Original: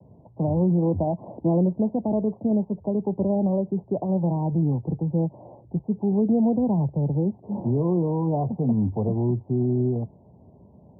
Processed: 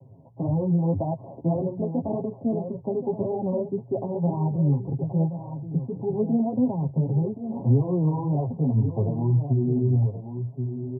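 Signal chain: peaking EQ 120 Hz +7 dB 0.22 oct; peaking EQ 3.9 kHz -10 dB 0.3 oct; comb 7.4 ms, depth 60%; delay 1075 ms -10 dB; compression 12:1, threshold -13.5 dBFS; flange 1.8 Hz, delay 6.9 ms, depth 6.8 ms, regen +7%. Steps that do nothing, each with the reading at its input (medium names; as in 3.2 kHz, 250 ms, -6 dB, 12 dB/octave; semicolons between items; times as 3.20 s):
peaking EQ 3.9 kHz: input has nothing above 960 Hz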